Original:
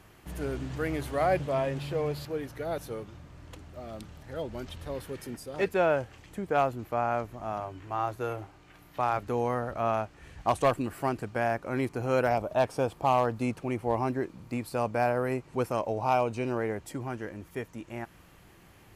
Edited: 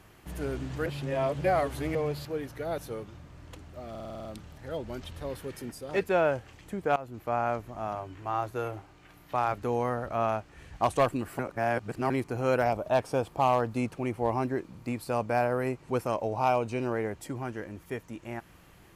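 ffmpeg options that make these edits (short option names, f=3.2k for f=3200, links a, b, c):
-filter_complex "[0:a]asplit=13[a][b][c][d][e][f][g][h][i][j][k][l][m];[a]atrim=end=0.862[n];[b]atrim=start=0.858:end=1.952,asetpts=PTS-STARTPTS,areverse[o];[c]atrim=start=1.948:end=3.952[p];[d]atrim=start=3.898:end=3.952[q];[e]atrim=start=3.898:end=3.952[r];[f]atrim=start=3.898:end=3.952[s];[g]atrim=start=3.898:end=3.952[t];[h]atrim=start=3.898:end=3.952[u];[i]atrim=start=3.898:end=3.952[v];[j]atrim=start=3.898:end=6.61,asetpts=PTS-STARTPTS,afade=t=out:st=2.708:d=0.004:c=hsin:silence=0.105925[w];[k]atrim=start=6.61:end=11.042,asetpts=PTS-STARTPTS,afade=t=in:d=0.46:c=qsin:silence=0.105925[x];[l]atrim=start=11.038:end=11.752,asetpts=PTS-STARTPTS,areverse[y];[m]atrim=start=11.748[z];[n][o]acrossfade=d=0.004:c1=hsin:c2=hsin[aa];[aa][p]acrossfade=d=0.004:c1=hsin:c2=hsin[ab];[ab][q]acrossfade=d=0.004:c1=hsin:c2=hsin[ac];[ac][r]acrossfade=d=0.004:c1=hsin:c2=hsin[ad];[ad][s]acrossfade=d=0.004:c1=hsin:c2=hsin[ae];[ae][t]acrossfade=d=0.004:c1=hsin:c2=hsin[af];[af][u]acrossfade=d=0.004:c1=hsin:c2=hsin[ag];[ag][v]acrossfade=d=0.004:c1=hsin:c2=hsin[ah];[w][x]concat=n=2:v=0:a=1[ai];[ah][ai]acrossfade=d=0.004:c1=hsin:c2=hsin[aj];[aj][y]acrossfade=d=0.004:c1=hsin:c2=hsin[ak];[ak][z]acrossfade=d=0.004:c1=hsin:c2=hsin"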